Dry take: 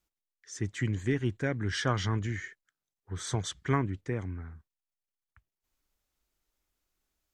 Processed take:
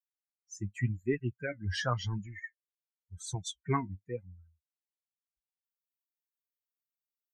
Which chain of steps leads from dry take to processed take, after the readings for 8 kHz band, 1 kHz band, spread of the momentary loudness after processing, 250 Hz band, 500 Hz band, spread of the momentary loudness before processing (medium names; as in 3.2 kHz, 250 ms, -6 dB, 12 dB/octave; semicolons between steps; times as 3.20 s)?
-3.5 dB, -1.5 dB, 13 LU, -5.0 dB, -2.5 dB, 13 LU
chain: expander on every frequency bin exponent 3; flange 0.91 Hz, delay 4.9 ms, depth 7.1 ms, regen +43%; trim +6.5 dB